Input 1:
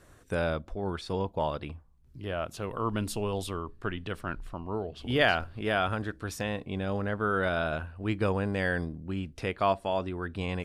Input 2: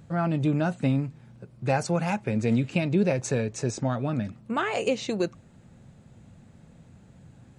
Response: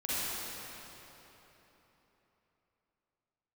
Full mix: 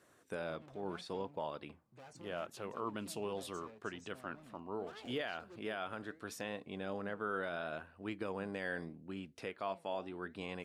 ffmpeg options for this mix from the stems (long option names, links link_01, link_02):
-filter_complex "[0:a]volume=-3dB[link_01];[1:a]asoftclip=type=hard:threshold=-27dB,adelay=300,volume=-19.5dB[link_02];[link_01][link_02]amix=inputs=2:normalize=0,highpass=200,flanger=delay=0.4:depth=7.8:regen=88:speed=0.75:shape=triangular,alimiter=level_in=4dB:limit=-24dB:level=0:latency=1:release=219,volume=-4dB"